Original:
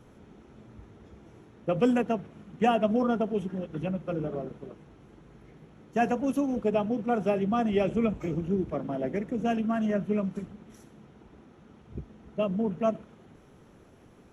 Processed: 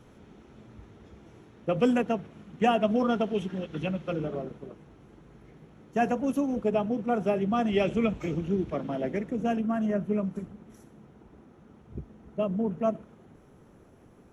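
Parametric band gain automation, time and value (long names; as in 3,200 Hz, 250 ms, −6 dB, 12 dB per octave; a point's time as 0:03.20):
parametric band 3,600 Hz 2 octaves
0:02.75 +2.5 dB
0:03.24 +9.5 dB
0:04.06 +9.5 dB
0:04.66 −1 dB
0:07.38 −1 dB
0:07.83 +6.5 dB
0:08.96 +6.5 dB
0:09.64 −5.5 dB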